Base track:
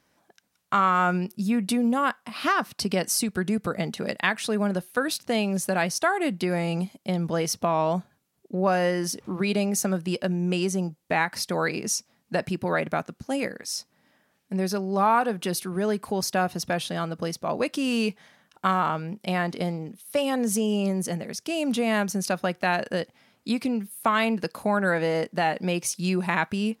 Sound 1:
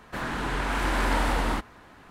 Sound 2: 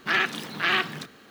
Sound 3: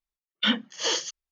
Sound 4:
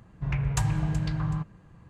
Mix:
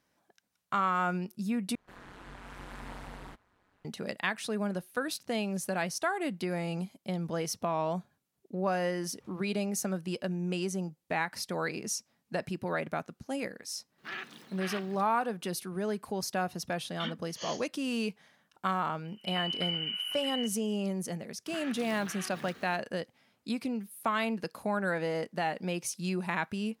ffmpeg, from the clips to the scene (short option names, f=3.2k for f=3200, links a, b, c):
-filter_complex "[2:a]asplit=2[a][b];[0:a]volume=-7.5dB[c];[1:a]tremolo=f=190:d=0.919[d];[4:a]lowpass=f=2.6k:t=q:w=0.5098,lowpass=f=2.6k:t=q:w=0.6013,lowpass=f=2.6k:t=q:w=0.9,lowpass=f=2.6k:t=q:w=2.563,afreqshift=-3100[e];[b]acompressor=threshold=-40dB:ratio=6:attack=3.2:release=140:knee=1:detection=peak[f];[c]asplit=2[g][h];[g]atrim=end=1.754[i];[d]atrim=end=2.1,asetpts=PTS-STARTPTS,volume=-16dB[j];[h]atrim=start=3.846[k];[a]atrim=end=1.3,asetpts=PTS-STARTPTS,volume=-17dB,afade=t=in:d=0.004:c=hsin,afade=t=out:st=1.296:d=0.004:c=hsin,adelay=13980[l];[3:a]atrim=end=1.31,asetpts=PTS-STARTPTS,volume=-15dB,afade=t=in:d=0.004:c=hsin,afade=t=out:st=1.306:d=0.004:c=hsin,adelay=16570[m];[e]atrim=end=1.89,asetpts=PTS-STARTPTS,volume=-9dB,afade=t=in:d=0.004:c=hsin,afade=t=out:st=1.886:d=0.004:c=hsin,adelay=19040[n];[f]atrim=end=1.3,asetpts=PTS-STARTPTS,volume=-1.5dB,afade=t=in:d=0.004:c=hsin,afade=t=out:st=1.296:d=0.004:c=hsin,adelay=21470[o];[i][j]acrossfade=d=0.004:c1=hsin:c2=hsin[p];[p][k]acrossfade=d=0.004:c1=hsin:c2=hsin[q];[q][l][m][n][o]amix=inputs=5:normalize=0"